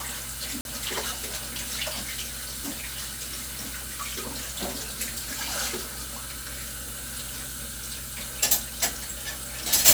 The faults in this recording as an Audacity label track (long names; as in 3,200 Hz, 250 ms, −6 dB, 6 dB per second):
0.610000	0.650000	drop-out 41 ms